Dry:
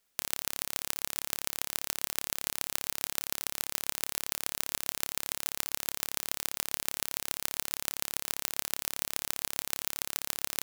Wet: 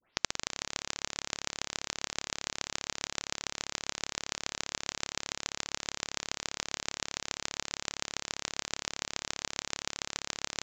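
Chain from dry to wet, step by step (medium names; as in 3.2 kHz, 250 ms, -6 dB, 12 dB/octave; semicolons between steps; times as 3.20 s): tape start-up on the opening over 0.56 s; resampled via 16 kHz; trim +1.5 dB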